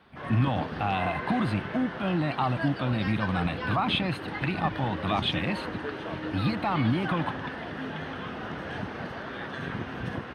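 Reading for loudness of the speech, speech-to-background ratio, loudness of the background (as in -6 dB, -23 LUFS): -29.0 LUFS, 6.0 dB, -35.0 LUFS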